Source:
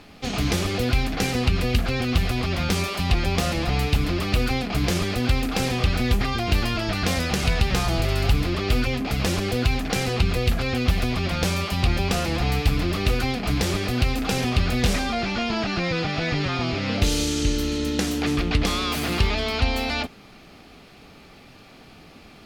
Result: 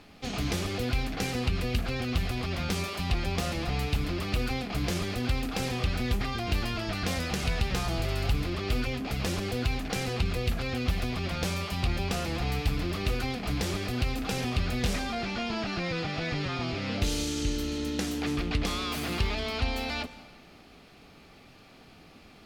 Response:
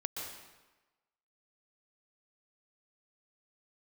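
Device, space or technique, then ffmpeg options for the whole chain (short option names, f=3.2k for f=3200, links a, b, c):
saturated reverb return: -filter_complex "[0:a]asplit=2[a][b];[1:a]atrim=start_sample=2205[c];[b][c]afir=irnorm=-1:irlink=0,asoftclip=type=tanh:threshold=-26dB,volume=-10dB[d];[a][d]amix=inputs=2:normalize=0,volume=-8dB"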